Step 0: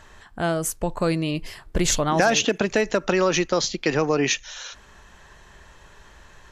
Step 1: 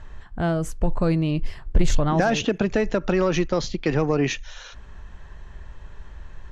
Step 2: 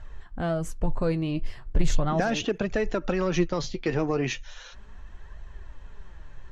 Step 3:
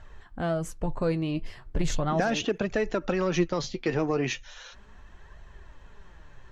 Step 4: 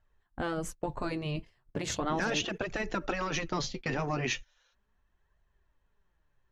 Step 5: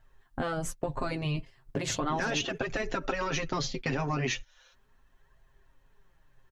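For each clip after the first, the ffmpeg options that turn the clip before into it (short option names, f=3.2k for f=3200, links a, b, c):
-af "aemphasis=mode=reproduction:type=bsi,acontrast=37,volume=-7.5dB"
-af "flanger=delay=1.3:depth=8.4:regen=50:speed=0.37:shape=triangular"
-af "lowshelf=f=78:g=-8.5"
-af "afftfilt=real='re*lt(hypot(re,im),0.282)':imag='im*lt(hypot(re,im),0.282)':win_size=1024:overlap=0.75,agate=range=-24dB:threshold=-38dB:ratio=16:detection=peak"
-af "aecho=1:1:7.5:0.56,acompressor=threshold=-43dB:ratio=2,volume=8.5dB"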